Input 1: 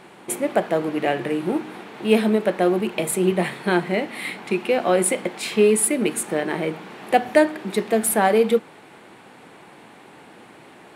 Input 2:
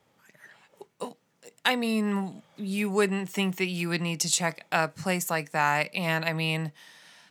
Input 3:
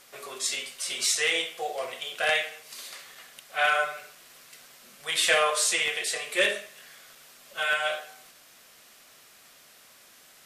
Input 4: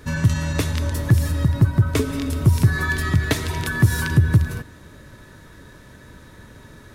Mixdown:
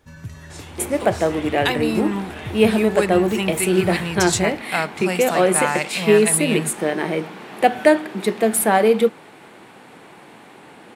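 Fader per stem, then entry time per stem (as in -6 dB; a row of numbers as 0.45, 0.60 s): +2.0, +2.5, -14.5, -17.0 dB; 0.50, 0.00, 0.10, 0.00 s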